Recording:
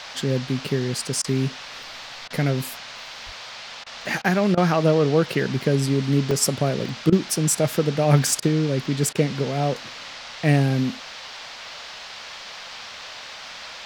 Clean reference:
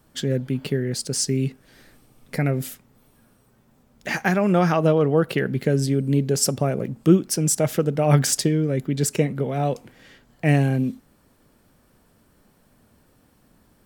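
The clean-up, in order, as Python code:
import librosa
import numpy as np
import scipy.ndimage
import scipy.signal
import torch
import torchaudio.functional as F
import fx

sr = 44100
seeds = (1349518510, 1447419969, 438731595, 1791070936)

y = fx.fix_deplosive(x, sr, at_s=(3.25,))
y = fx.fix_interpolate(y, sr, at_s=(1.83, 6.31, 6.89), length_ms=2.5)
y = fx.fix_interpolate(y, sr, at_s=(1.22, 2.28, 3.84, 4.22, 4.55, 7.1, 8.4, 9.13), length_ms=22.0)
y = fx.noise_reduce(y, sr, print_start_s=3.45, print_end_s=3.95, reduce_db=21.0)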